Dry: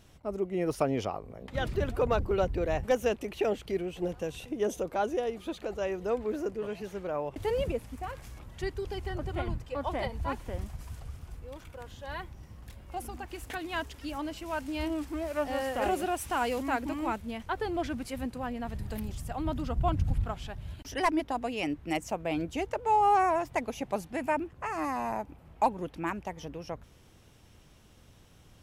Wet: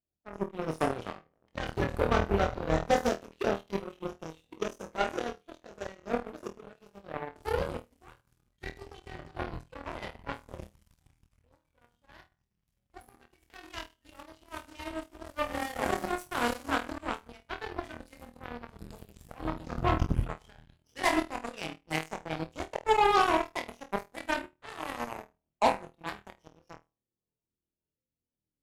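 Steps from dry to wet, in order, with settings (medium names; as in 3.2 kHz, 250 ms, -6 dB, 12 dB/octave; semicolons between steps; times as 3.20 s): coarse spectral quantiser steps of 30 dB; flutter echo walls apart 4.3 m, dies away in 0.52 s; Chebyshev shaper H 7 -17 dB, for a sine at -11.5 dBFS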